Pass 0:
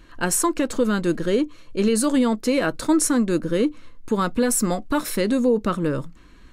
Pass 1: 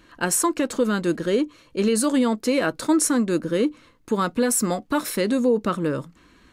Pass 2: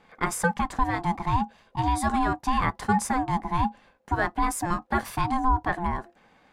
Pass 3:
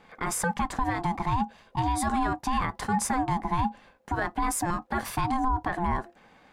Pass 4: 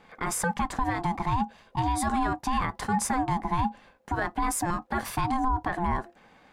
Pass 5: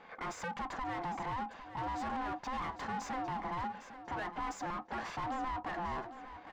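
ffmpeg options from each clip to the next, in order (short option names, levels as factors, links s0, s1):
-af "highpass=f=140:p=1"
-af "equalizer=f=760:w=0.36:g=12,aeval=exprs='val(0)*sin(2*PI*520*n/s)':c=same,volume=0.355"
-af "alimiter=limit=0.106:level=0:latency=1:release=56,volume=1.33"
-af anull
-filter_complex "[0:a]aresample=16000,asoftclip=type=tanh:threshold=0.0335,aresample=44100,asplit=2[s0][s1];[s1]highpass=f=720:p=1,volume=6.31,asoftclip=type=tanh:threshold=0.0562[s2];[s0][s2]amix=inputs=2:normalize=0,lowpass=f=1400:p=1,volume=0.501,aecho=1:1:805|1610|2415:0.237|0.0522|0.0115,volume=0.531"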